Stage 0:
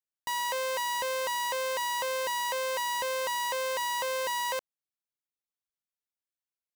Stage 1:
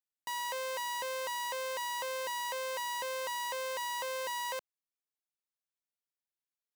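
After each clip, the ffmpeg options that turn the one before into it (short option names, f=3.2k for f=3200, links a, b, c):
-af "highpass=f=170:p=1,volume=-5.5dB"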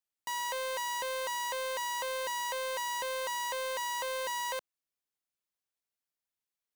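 -af "aeval=exprs='0.0355*(cos(1*acos(clip(val(0)/0.0355,-1,1)))-cos(1*PI/2))+0.000794*(cos(2*acos(clip(val(0)/0.0355,-1,1)))-cos(2*PI/2))':c=same,acrusher=bits=3:mode=log:mix=0:aa=0.000001,volume=1.5dB"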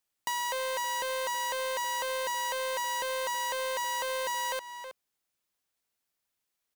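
-filter_complex "[0:a]asplit=2[a][b];[b]adelay=320.7,volume=-14dB,highshelf=f=4k:g=-7.22[c];[a][c]amix=inputs=2:normalize=0,acompressor=threshold=-38dB:ratio=4,volume=8dB"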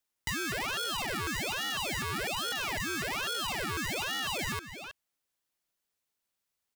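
-af "aeval=exprs='val(0)*sin(2*PI*1500*n/s+1500*0.6/1.2*sin(2*PI*1.2*n/s))':c=same,volume=1.5dB"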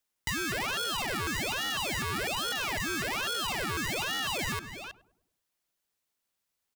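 -filter_complex "[0:a]asplit=2[a][b];[b]adelay=102,lowpass=f=820:p=1,volume=-14dB,asplit=2[c][d];[d]adelay=102,lowpass=f=820:p=1,volume=0.52,asplit=2[e][f];[f]adelay=102,lowpass=f=820:p=1,volume=0.52,asplit=2[g][h];[h]adelay=102,lowpass=f=820:p=1,volume=0.52,asplit=2[i][j];[j]adelay=102,lowpass=f=820:p=1,volume=0.52[k];[a][c][e][g][i][k]amix=inputs=6:normalize=0,volume=1.5dB"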